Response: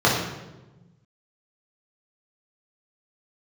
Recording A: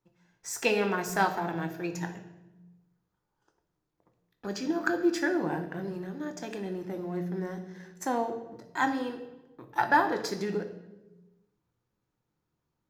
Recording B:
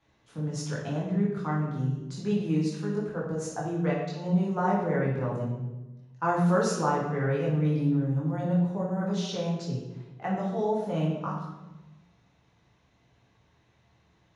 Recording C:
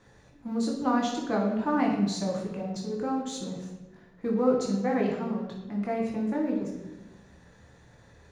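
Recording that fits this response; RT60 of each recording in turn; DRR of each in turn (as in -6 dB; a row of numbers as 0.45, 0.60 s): B; 1.1, 1.1, 1.1 s; 6.5, -5.5, -1.5 dB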